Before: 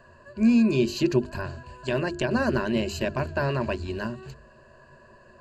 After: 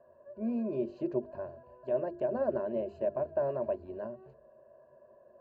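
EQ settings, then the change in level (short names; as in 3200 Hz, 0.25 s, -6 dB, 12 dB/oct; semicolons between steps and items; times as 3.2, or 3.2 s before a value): band-pass 600 Hz, Q 3.6; tilt -2.5 dB/oct; -1.5 dB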